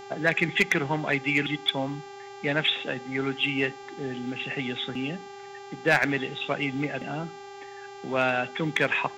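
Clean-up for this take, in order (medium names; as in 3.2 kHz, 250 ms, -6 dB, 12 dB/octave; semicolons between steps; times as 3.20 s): clip repair -12.5 dBFS; de-hum 395.3 Hz, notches 19; band-stop 820 Hz, Q 30; expander -35 dBFS, range -21 dB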